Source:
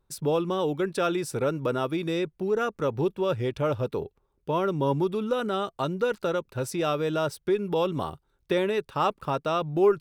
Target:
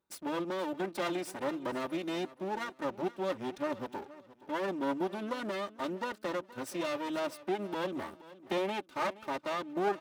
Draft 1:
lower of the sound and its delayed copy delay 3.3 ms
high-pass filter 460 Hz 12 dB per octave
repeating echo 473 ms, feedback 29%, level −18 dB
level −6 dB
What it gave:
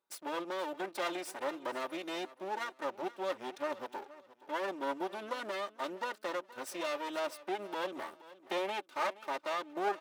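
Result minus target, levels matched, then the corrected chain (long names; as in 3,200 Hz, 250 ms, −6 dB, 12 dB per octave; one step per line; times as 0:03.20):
125 Hz band −12.0 dB
lower of the sound and its delayed copy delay 3.3 ms
high-pass filter 160 Hz 12 dB per octave
repeating echo 473 ms, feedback 29%, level −18 dB
level −6 dB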